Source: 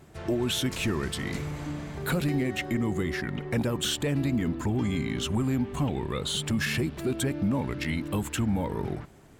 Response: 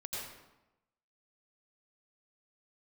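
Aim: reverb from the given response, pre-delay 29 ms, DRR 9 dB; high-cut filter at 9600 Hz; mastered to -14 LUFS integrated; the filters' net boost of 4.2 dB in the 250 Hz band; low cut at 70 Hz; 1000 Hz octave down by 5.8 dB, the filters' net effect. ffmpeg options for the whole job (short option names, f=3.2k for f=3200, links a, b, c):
-filter_complex "[0:a]highpass=70,lowpass=9.6k,equalizer=f=250:t=o:g=5.5,equalizer=f=1k:t=o:g=-8,asplit=2[a][b];[1:a]atrim=start_sample=2205,adelay=29[c];[b][c]afir=irnorm=-1:irlink=0,volume=-10dB[d];[a][d]amix=inputs=2:normalize=0,volume=12.5dB"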